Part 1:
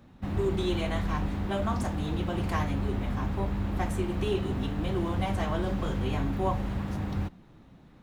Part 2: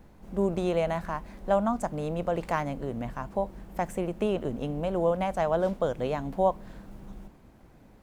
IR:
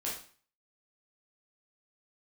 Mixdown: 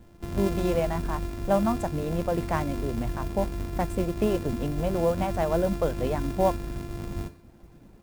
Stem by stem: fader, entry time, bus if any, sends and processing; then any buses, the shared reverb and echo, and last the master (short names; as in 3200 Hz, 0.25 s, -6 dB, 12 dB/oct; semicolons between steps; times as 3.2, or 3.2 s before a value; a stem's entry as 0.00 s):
-6.0 dB, 0.00 s, send -21 dB, sample sorter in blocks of 128 samples; auto duck -12 dB, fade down 0.90 s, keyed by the second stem
-7.0 dB, 0.00 s, polarity flipped, no send, reverb removal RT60 0.74 s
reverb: on, RT60 0.45 s, pre-delay 7 ms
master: AGC gain up to 5.5 dB; low shelf 410 Hz +7.5 dB; modulation noise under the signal 26 dB